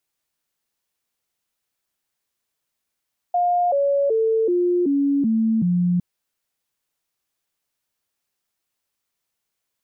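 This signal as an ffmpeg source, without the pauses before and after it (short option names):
-f lavfi -i "aevalsrc='0.158*clip(min(mod(t,0.38),0.38-mod(t,0.38))/0.005,0,1)*sin(2*PI*708*pow(2,-floor(t/0.38)/3)*mod(t,0.38))':d=2.66:s=44100"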